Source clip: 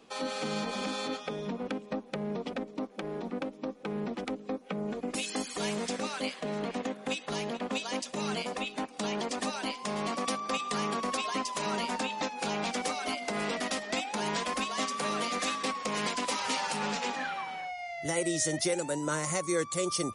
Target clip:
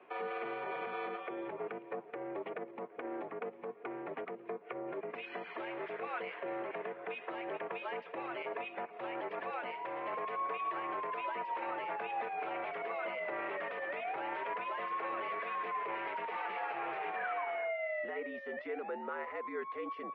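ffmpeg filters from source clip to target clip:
ffmpeg -i in.wav -af "alimiter=level_in=6dB:limit=-24dB:level=0:latency=1:release=64,volume=-6dB,highpass=frequency=450:width_type=q:width=0.5412,highpass=frequency=450:width_type=q:width=1.307,lowpass=frequency=2500:width_type=q:width=0.5176,lowpass=frequency=2500:width_type=q:width=0.7071,lowpass=frequency=2500:width_type=q:width=1.932,afreqshift=-72,volume=2.5dB" out.wav

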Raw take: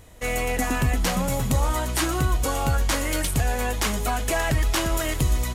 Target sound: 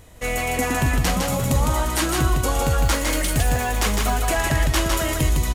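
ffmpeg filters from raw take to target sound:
ffmpeg -i in.wav -filter_complex "[0:a]asettb=1/sr,asplit=3[link_01][link_02][link_03];[link_01]atrim=end=2.854[link_04];[link_02]atrim=start=2.85:end=4.22,asetpts=PTS-STARTPTS,afade=type=in:duration=0.004:curve=qsin,afade=type=out:start_time=1.366:duration=0.004:curve=qsin,acrusher=bits=6:mode=log:mix=0:aa=0.000001[link_05];[link_03]atrim=start=4.216[link_06];[link_04][link_05]acrossfade=duration=0.004:curve1=hsin:curve2=qsin[link_07];[link_07][link_06]acrossfade=duration=0.004:curve1=qsin:curve2=hsin,asplit=2[link_08][link_09];[link_09]aecho=0:1:157:0.668[link_10];[link_08][link_10]amix=inputs=2:normalize=0,volume=1.5dB" out.wav

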